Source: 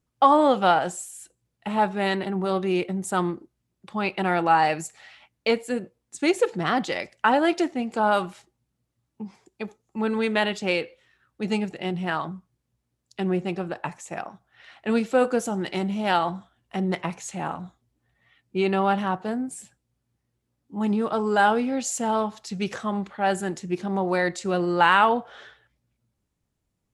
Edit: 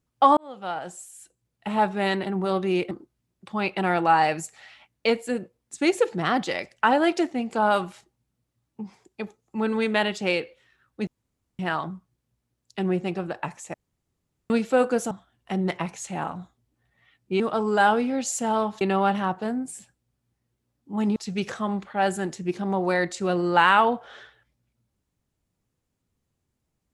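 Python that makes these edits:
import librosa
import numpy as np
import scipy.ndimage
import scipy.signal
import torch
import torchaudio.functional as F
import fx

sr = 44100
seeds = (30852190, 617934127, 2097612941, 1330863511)

y = fx.edit(x, sr, fx.fade_in_span(start_s=0.37, length_s=1.32),
    fx.cut(start_s=2.91, length_s=0.41),
    fx.room_tone_fill(start_s=11.48, length_s=0.52),
    fx.room_tone_fill(start_s=14.15, length_s=0.76),
    fx.cut(start_s=15.52, length_s=0.83),
    fx.move(start_s=20.99, length_s=1.41, to_s=18.64), tone=tone)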